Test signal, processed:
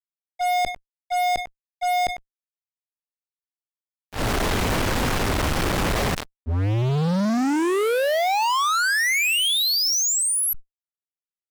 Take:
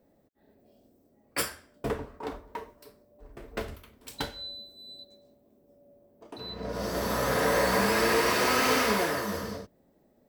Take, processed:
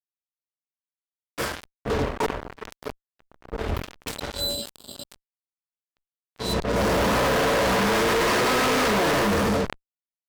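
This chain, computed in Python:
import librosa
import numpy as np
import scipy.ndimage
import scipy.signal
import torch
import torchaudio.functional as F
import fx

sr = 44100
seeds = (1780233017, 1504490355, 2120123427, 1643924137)

p1 = fx.lowpass(x, sr, hz=1600.0, slope=6)
p2 = fx.over_compress(p1, sr, threshold_db=-31.0, ratio=-0.5)
p3 = p1 + F.gain(torch.from_numpy(p2), -3.0).numpy()
p4 = fx.auto_swell(p3, sr, attack_ms=237.0)
p5 = p4 + fx.echo_feedback(p4, sr, ms=98, feedback_pct=48, wet_db=-21, dry=0)
p6 = fx.fuzz(p5, sr, gain_db=41.0, gate_db=-44.0)
p7 = fx.sustainer(p6, sr, db_per_s=120.0)
y = F.gain(torch.from_numpy(p7), -7.0).numpy()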